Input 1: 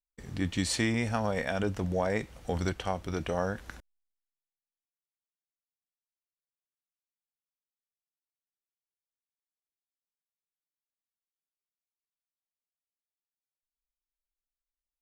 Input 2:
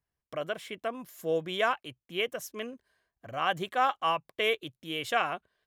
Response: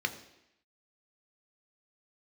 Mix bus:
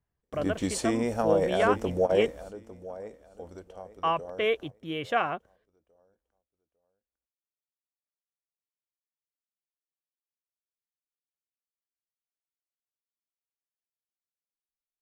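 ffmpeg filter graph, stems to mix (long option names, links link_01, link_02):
-filter_complex "[0:a]equalizer=frequency=125:width_type=o:width=1:gain=-9,equalizer=frequency=500:width_type=o:width=1:gain=8,equalizer=frequency=2000:width_type=o:width=1:gain=-8,equalizer=frequency=4000:width_type=o:width=1:gain=-7,adelay=50,volume=1.5dB,asplit=2[link_01][link_02];[link_02]volume=-16.5dB[link_03];[1:a]lowpass=frequency=1600:poles=1,lowshelf=frequency=350:gain=3.5,volume=2.5dB,asplit=3[link_04][link_05][link_06];[link_04]atrim=end=2.27,asetpts=PTS-STARTPTS,afade=type=out:start_time=2.266:duration=0.004:curve=hsin[link_07];[link_05]atrim=start=2.27:end=4.03,asetpts=PTS-STARTPTS,volume=0[link_08];[link_06]atrim=start=4.03,asetpts=PTS-STARTPTS,afade=type=in:duration=0.004:curve=hsin[link_09];[link_07][link_08][link_09]concat=n=3:v=0:a=1,asplit=2[link_10][link_11];[link_11]apad=whole_len=664572[link_12];[link_01][link_12]sidechaingate=range=-39dB:threshold=-58dB:ratio=16:detection=peak[link_13];[link_03]aecho=0:1:852|1704|2556|3408:1|0.24|0.0576|0.0138[link_14];[link_13][link_10][link_14]amix=inputs=3:normalize=0"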